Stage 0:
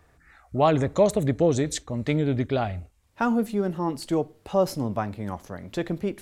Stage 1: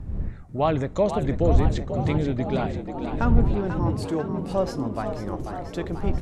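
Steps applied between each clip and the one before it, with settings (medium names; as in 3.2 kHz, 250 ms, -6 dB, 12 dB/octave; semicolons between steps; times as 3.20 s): wind noise 94 Hz -24 dBFS; low-pass that closes with the level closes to 3 kHz, closed at -12.5 dBFS; frequency-shifting echo 489 ms, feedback 64%, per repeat +74 Hz, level -9 dB; trim -2.5 dB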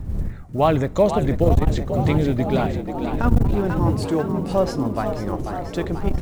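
block-companded coder 7-bit; transformer saturation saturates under 120 Hz; trim +5 dB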